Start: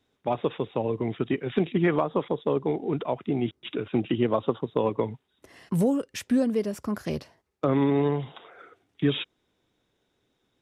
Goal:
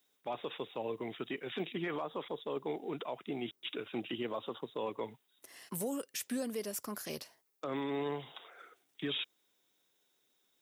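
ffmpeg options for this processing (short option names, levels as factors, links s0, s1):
-af "highpass=94,aemphasis=mode=production:type=riaa,alimiter=limit=0.0841:level=0:latency=1:release=16,volume=0.473"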